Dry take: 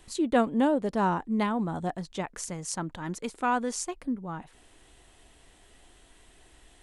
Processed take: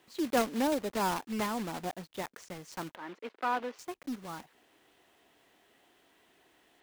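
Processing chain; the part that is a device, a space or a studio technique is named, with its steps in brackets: early digital voice recorder (BPF 220–3400 Hz; block floating point 3-bit); 2.95–3.79 three-band isolator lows -22 dB, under 240 Hz, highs -20 dB, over 3600 Hz; gain -4.5 dB

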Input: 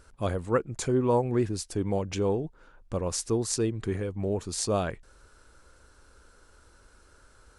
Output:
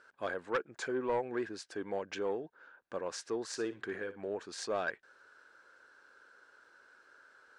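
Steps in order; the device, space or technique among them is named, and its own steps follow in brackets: intercom (BPF 390–4500 Hz; bell 1600 Hz +12 dB 0.32 oct; soft clip -19.5 dBFS, distortion -16 dB); 3.48–4.28 flutter echo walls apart 10.3 m, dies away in 0.27 s; gain -4.5 dB

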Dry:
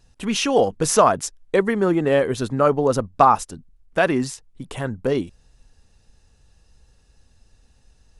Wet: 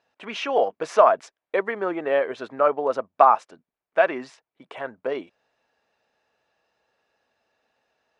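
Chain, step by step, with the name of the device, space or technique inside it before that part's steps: tin-can telephone (BPF 540–2400 Hz; small resonant body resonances 640/2300 Hz, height 7 dB); gain -1 dB

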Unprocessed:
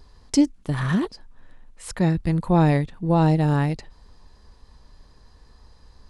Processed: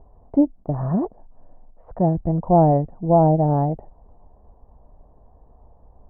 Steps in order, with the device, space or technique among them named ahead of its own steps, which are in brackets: under water (LPF 900 Hz 24 dB/oct; bell 680 Hz +12 dB 0.58 oct)

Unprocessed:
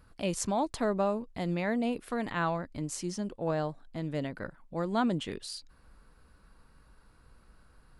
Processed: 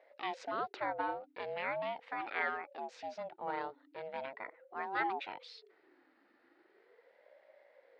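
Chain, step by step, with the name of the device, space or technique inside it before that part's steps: voice changer toy (ring modulator with a swept carrier 430 Hz, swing 35%, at 0.4 Hz; speaker cabinet 560–3700 Hz, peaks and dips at 1100 Hz -6 dB, 2000 Hz +4 dB, 3300 Hz -3 dB)

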